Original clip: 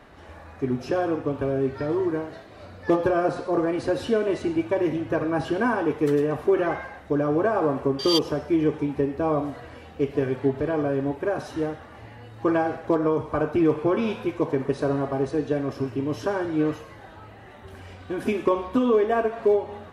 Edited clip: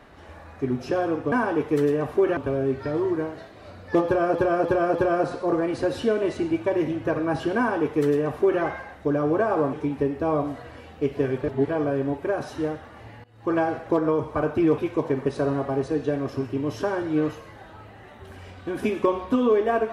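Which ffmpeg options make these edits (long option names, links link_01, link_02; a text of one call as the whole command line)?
ffmpeg -i in.wav -filter_complex "[0:a]asplit=11[link_01][link_02][link_03][link_04][link_05][link_06][link_07][link_08][link_09][link_10][link_11];[link_01]atrim=end=1.322[link_12];[link_02]atrim=start=5.618:end=6.672[link_13];[link_03]atrim=start=1.318:end=3.302[link_14];[link_04]atrim=start=2.998:end=3.302[link_15];[link_05]atrim=start=2.998:end=3.302[link_16];[link_06]atrim=start=2.998:end=7.782[link_17];[link_07]atrim=start=8.708:end=10.412[link_18];[link_08]atrim=start=10.408:end=10.662,asetpts=PTS-STARTPTS,areverse[link_19];[link_09]atrim=start=10.658:end=12.22,asetpts=PTS-STARTPTS,afade=type=out:start_time=1.558:duration=0.004:curve=hsin:silence=0.0749894[link_20];[link_10]atrim=start=12.22:end=13.762,asetpts=PTS-STARTPTS,afade=type=in:duration=0.35:silence=0.0749894[link_21];[link_11]atrim=start=14.208[link_22];[link_12][link_13]acrossfade=duration=0.004:curve1=hsin:curve2=hsin[link_23];[link_23][link_14]acrossfade=duration=0.004:curve1=hsin:curve2=hsin[link_24];[link_24][link_15]acrossfade=duration=0.004:curve1=hsin:curve2=hsin[link_25];[link_25][link_16]acrossfade=duration=0.004:curve1=hsin:curve2=hsin[link_26];[link_26][link_17]acrossfade=duration=0.004:curve1=hsin:curve2=hsin[link_27];[link_27][link_18]acrossfade=duration=0.004:curve1=hsin:curve2=hsin[link_28];[link_28][link_19]acrossfade=duration=0.004:curve1=hsin:curve2=hsin[link_29];[link_20][link_21]concat=n=2:v=0:a=1[link_30];[link_29][link_30]acrossfade=duration=0.004:curve1=hsin:curve2=hsin[link_31];[link_31][link_22]acrossfade=duration=0.004:curve1=hsin:curve2=hsin" out.wav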